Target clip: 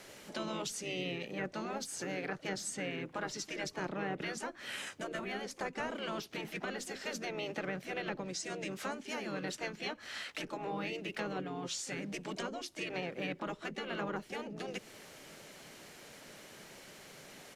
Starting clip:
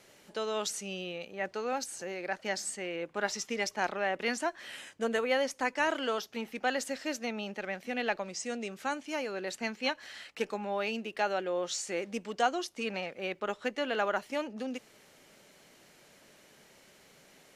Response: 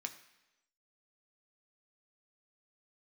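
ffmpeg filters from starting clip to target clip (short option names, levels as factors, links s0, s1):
-filter_complex "[0:a]acrossover=split=350[s0][s1];[s1]acompressor=threshold=0.00708:ratio=8[s2];[s0][s2]amix=inputs=2:normalize=0,asplit=4[s3][s4][s5][s6];[s4]asetrate=33038,aresample=44100,atempo=1.33484,volume=0.224[s7];[s5]asetrate=35002,aresample=44100,atempo=1.25992,volume=0.355[s8];[s6]asetrate=58866,aresample=44100,atempo=0.749154,volume=0.126[s9];[s3][s7][s8][s9]amix=inputs=4:normalize=0,afftfilt=real='re*lt(hypot(re,im),0.0631)':imag='im*lt(hypot(re,im),0.0631)':win_size=1024:overlap=0.75,volume=1.88"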